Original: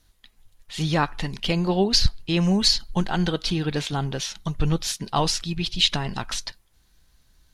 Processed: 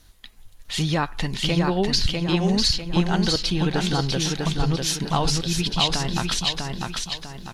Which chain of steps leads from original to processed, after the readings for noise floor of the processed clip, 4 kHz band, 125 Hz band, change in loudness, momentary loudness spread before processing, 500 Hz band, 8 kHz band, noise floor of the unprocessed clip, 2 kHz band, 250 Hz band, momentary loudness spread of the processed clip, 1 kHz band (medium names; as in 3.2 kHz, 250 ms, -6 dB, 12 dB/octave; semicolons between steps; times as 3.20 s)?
-50 dBFS, +1.0 dB, +2.0 dB, +0.5 dB, 10 LU, +1.0 dB, +2.5 dB, -61 dBFS, +2.0 dB, +1.5 dB, 8 LU, +1.5 dB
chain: compression 2.5:1, threshold -32 dBFS, peak gain reduction 13 dB; on a send: feedback delay 648 ms, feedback 40%, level -3.5 dB; on the sum: trim +8 dB